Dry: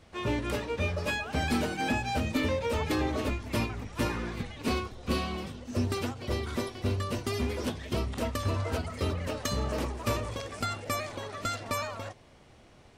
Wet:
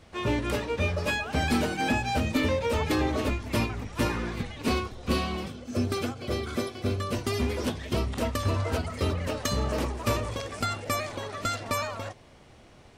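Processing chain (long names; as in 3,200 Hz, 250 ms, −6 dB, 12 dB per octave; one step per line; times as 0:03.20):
0:05.48–0:07.13: notch comb filter 930 Hz
level +3 dB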